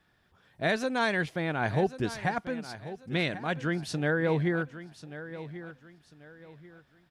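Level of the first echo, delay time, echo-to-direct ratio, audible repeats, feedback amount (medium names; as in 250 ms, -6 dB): -14.0 dB, 1089 ms, -13.5 dB, 3, 31%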